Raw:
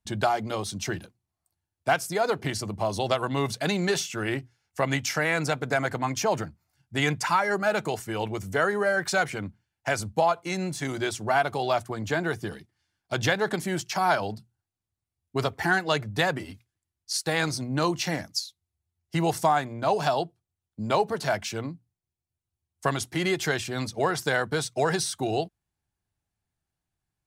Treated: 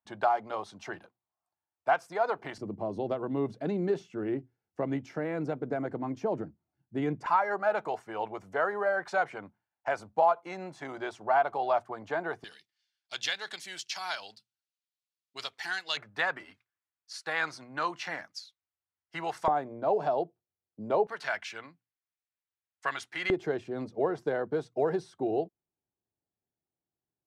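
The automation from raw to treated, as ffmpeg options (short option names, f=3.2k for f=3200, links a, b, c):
-af "asetnsamples=n=441:p=0,asendcmd='2.58 bandpass f 320;7.26 bandpass f 830;12.44 bandpass f 3800;15.97 bandpass f 1400;19.48 bandpass f 470;21.07 bandpass f 1800;23.3 bandpass f 400',bandpass=f=910:t=q:w=1.3:csg=0"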